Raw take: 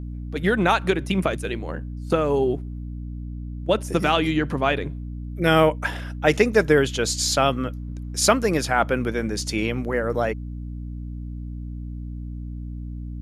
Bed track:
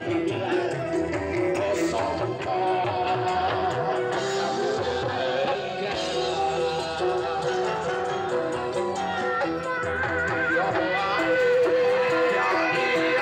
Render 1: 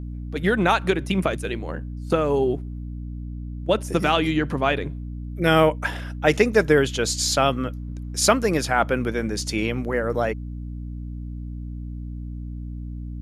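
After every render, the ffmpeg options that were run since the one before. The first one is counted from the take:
-af anull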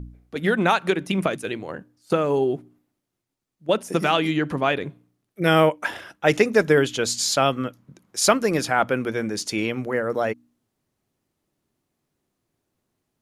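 -af "bandreject=f=60:t=h:w=4,bandreject=f=120:t=h:w=4,bandreject=f=180:t=h:w=4,bandreject=f=240:t=h:w=4,bandreject=f=300:t=h:w=4"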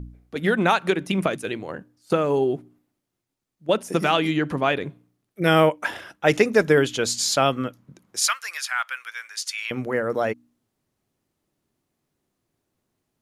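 -filter_complex "[0:a]asettb=1/sr,asplit=3[a][b][c];[a]atrim=end=8.194[d];[b]atrim=start=8.19:end=9.71,asetpts=PTS-STARTPTS,afade=t=in:d=0.004:c=qsin,afade=t=out:st=1.516:d=0.004:c=qsin,highpass=f=1.3k:w=0.5412,highpass=f=1.3k:w=1.3066[e];[c]atrim=start=9.706[f];[d][e]acrossfade=d=0.004:c1=hsin:c2=qsin[g];[g][f]acrossfade=d=0.004:c1=qsin:c2=hsin"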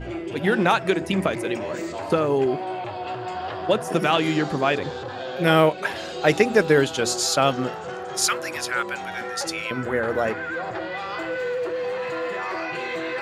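-filter_complex "[1:a]volume=-6dB[a];[0:a][a]amix=inputs=2:normalize=0"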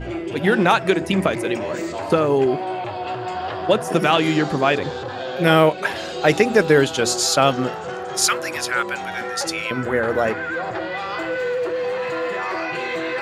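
-af "volume=3.5dB,alimiter=limit=-3dB:level=0:latency=1"

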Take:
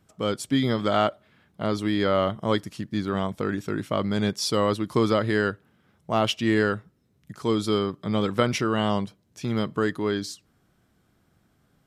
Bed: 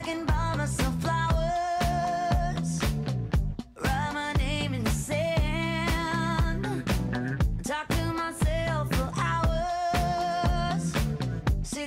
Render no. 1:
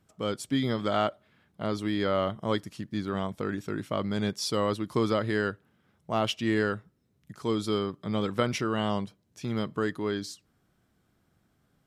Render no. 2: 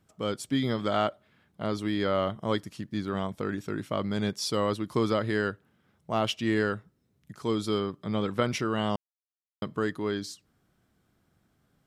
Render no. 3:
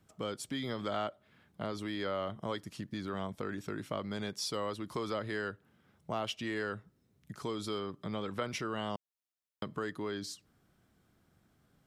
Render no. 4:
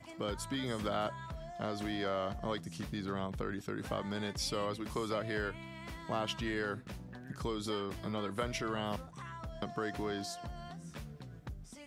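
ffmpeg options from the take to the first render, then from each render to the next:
-af "volume=-4.5dB"
-filter_complex "[0:a]asettb=1/sr,asplit=3[a][b][c];[a]atrim=end=7.804[d];[b]atrim=start=7.8:end=8.42,asetpts=PTS-STARTPTS,afade=t=in:d=0.004:c=qsin,afade=t=out:st=0.616:d=0.004:c=qsin,acrossover=split=4200[e][f];[f]acompressor=threshold=-56dB:ratio=4:attack=1:release=60[g];[e][g]amix=inputs=2:normalize=0[h];[c]atrim=start=8.416[i];[d][h]acrossfade=d=0.004:c1=hsin:c2=qsin[j];[j][i]acrossfade=d=0.004:c1=qsin:c2=hsin,asplit=3[k][l][m];[k]atrim=end=8.96,asetpts=PTS-STARTPTS,afade=t=out:st=8.956:d=0.004:c=hsin[n];[l]atrim=start=8.96:end=9.62,asetpts=PTS-STARTPTS,volume=0[o];[m]atrim=start=9.62,asetpts=PTS-STARTPTS,afade=t=in:d=0.004:c=hsin[p];[n][o][p]concat=n=3:v=0:a=1"
-filter_complex "[0:a]acrossover=split=420|800[a][b][c];[a]alimiter=level_in=5dB:limit=-24dB:level=0:latency=1,volume=-5dB[d];[d][b][c]amix=inputs=3:normalize=0,acompressor=threshold=-38dB:ratio=2"
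-filter_complex "[1:a]volume=-19dB[a];[0:a][a]amix=inputs=2:normalize=0"

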